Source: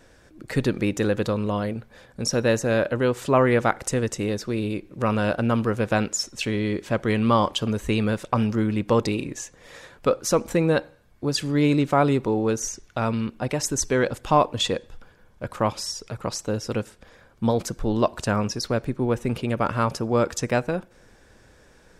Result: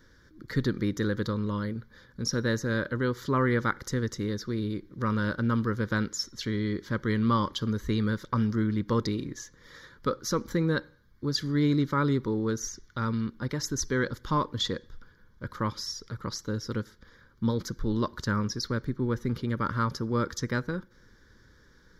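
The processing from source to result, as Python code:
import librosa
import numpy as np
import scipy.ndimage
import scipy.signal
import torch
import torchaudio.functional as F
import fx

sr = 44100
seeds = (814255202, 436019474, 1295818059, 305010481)

y = fx.fixed_phaser(x, sr, hz=2600.0, stages=6)
y = y * 10.0 ** (-2.5 / 20.0)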